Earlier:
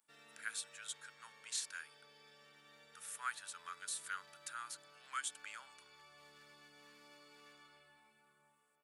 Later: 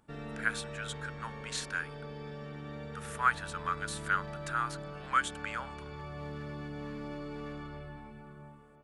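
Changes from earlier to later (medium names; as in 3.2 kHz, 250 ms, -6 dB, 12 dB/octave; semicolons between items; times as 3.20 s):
background: remove high-pass 46 Hz; master: remove differentiator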